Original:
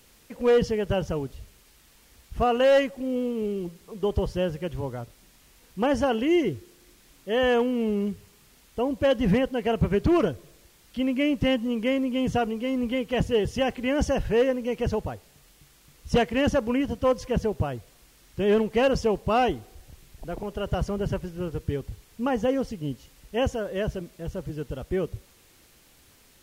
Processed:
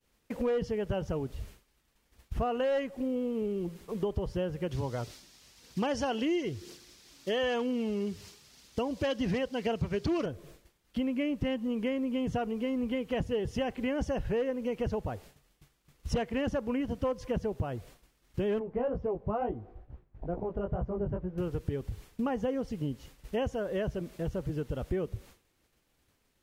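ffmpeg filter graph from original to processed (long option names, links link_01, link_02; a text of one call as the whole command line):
ffmpeg -i in.wav -filter_complex "[0:a]asettb=1/sr,asplit=3[link_01][link_02][link_03];[link_01]atrim=end=4.714[link_04];[link_02]atrim=start=4.71:end=10.26,asetpts=PTS-STARTPTS,afade=type=in:duration=0.004:curve=qsin,afade=type=out:start_time=5.546:duration=0.004:curve=qsin,highpass=69,equalizer=frequency=5100:width=0.81:gain=13.5,aphaser=in_gain=1:out_gain=1:delay=3.6:decay=0.27:speed=1:type=triangular[link_05];[link_03]atrim=start=10.256[link_06];[link_04][link_05]acrossfade=duration=0.004:curve1=hsin:curve2=qsin[link_07];[link_07][link_06]acrossfade=duration=0.004:curve1=qsin:curve2=hsin,asettb=1/sr,asplit=3[link_08][link_09][link_10];[link_08]atrim=end=18.594[link_11];[link_09]atrim=start=18.59:end=21.38,asetpts=PTS-STARTPTS,afade=type=in:duration=0.004:curve=qsin,afade=type=out:start_time=2.786:duration=0.004:curve=qsin,lowpass=1100,flanger=delay=16:depth=4.5:speed=2.2[link_12];[link_10]atrim=start=21.376[link_13];[link_11][link_12]acrossfade=duration=0.004:curve1=hsin:curve2=qsin[link_14];[link_14][link_13]acrossfade=duration=0.004:curve1=qsin:curve2=hsin,highshelf=frequency=2900:gain=-6.5,agate=range=-33dB:threshold=-47dB:ratio=3:detection=peak,acompressor=threshold=-35dB:ratio=4,volume=4.5dB" out.wav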